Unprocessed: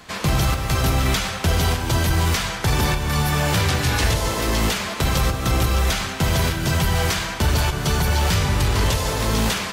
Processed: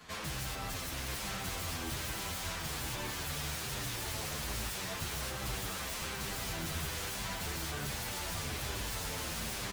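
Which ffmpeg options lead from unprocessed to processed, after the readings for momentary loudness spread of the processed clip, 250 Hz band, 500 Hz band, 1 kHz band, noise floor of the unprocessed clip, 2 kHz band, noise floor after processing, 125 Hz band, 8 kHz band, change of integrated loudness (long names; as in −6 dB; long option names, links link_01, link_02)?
1 LU, −19.5 dB, −18.5 dB, −17.0 dB, −30 dBFS, −15.0 dB, −40 dBFS, −22.0 dB, −11.5 dB, −16.5 dB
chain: -filter_complex "[0:a]acrossover=split=180[link_01][link_02];[link_01]acompressor=threshold=-33dB:ratio=10[link_03];[link_02]aeval=exprs='0.0473*(abs(mod(val(0)/0.0473+3,4)-2)-1)':channel_layout=same[link_04];[link_03][link_04]amix=inputs=2:normalize=0,aecho=1:1:1000:0.531,asplit=2[link_05][link_06];[link_06]adelay=8.8,afreqshift=-1.2[link_07];[link_05][link_07]amix=inputs=2:normalize=1,volume=-6.5dB"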